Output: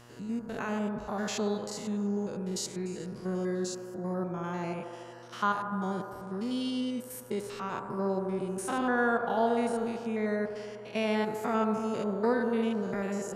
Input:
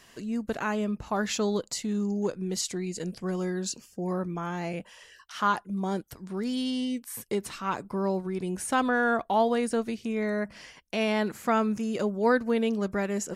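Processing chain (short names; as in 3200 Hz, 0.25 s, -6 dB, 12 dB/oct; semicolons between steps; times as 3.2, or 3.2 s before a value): stepped spectrum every 0.1 s; buzz 120 Hz, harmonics 14, -53 dBFS -4 dB/oct; band-limited delay 77 ms, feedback 81%, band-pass 680 Hz, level -7 dB; gain -2.5 dB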